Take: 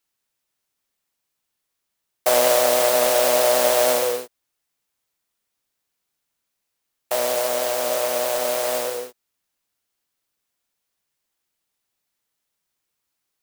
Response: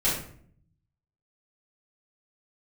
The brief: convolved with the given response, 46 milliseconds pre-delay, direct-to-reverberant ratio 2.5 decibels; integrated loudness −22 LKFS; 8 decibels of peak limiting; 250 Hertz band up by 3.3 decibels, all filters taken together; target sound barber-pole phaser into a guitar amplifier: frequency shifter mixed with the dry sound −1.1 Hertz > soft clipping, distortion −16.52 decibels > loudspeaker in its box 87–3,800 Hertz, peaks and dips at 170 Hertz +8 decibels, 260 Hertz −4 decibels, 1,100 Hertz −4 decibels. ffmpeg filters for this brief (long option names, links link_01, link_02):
-filter_complex "[0:a]equalizer=frequency=250:width_type=o:gain=6.5,alimiter=limit=-12.5dB:level=0:latency=1,asplit=2[link_01][link_02];[1:a]atrim=start_sample=2205,adelay=46[link_03];[link_02][link_03]afir=irnorm=-1:irlink=0,volume=-14dB[link_04];[link_01][link_04]amix=inputs=2:normalize=0,asplit=2[link_05][link_06];[link_06]afreqshift=-1.1[link_07];[link_05][link_07]amix=inputs=2:normalize=1,asoftclip=threshold=-17.5dB,highpass=87,equalizer=frequency=170:width_type=q:width=4:gain=8,equalizer=frequency=260:width_type=q:width=4:gain=-4,equalizer=frequency=1100:width_type=q:width=4:gain=-4,lowpass=frequency=3800:width=0.5412,lowpass=frequency=3800:width=1.3066,volume=5dB"